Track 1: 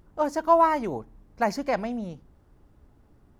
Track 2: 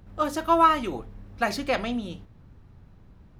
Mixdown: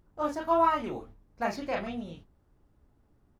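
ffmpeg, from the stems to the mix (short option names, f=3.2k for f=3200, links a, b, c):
-filter_complex "[0:a]volume=-8dB,asplit=2[a][b];[1:a]acrossover=split=4000[c][d];[d]acompressor=threshold=-56dB:ratio=4:attack=1:release=60[e];[c][e]amix=inputs=2:normalize=0,flanger=delay=9.8:depth=4.6:regen=41:speed=1.6:shape=triangular,volume=-1,adelay=27,volume=-5dB[f];[b]apad=whole_len=151004[g];[f][g]sidechaingate=range=-33dB:threshold=-54dB:ratio=16:detection=peak[h];[a][h]amix=inputs=2:normalize=0"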